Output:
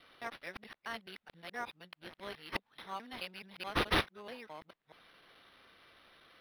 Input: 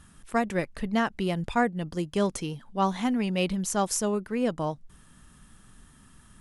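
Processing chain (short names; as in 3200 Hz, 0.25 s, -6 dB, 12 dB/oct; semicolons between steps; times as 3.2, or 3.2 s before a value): local time reversal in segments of 0.214 s; differentiator; decimation joined by straight lines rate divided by 6×; gain +2 dB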